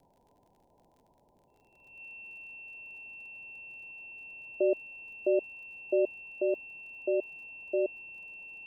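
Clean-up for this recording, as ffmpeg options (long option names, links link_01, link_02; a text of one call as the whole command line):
ffmpeg -i in.wav -af "adeclick=threshold=4,bandreject=frequency=2700:width=30,afwtdn=0.002" out.wav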